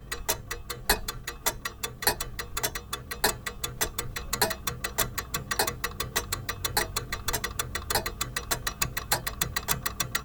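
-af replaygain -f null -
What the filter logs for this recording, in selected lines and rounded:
track_gain = +10.1 dB
track_peak = 0.312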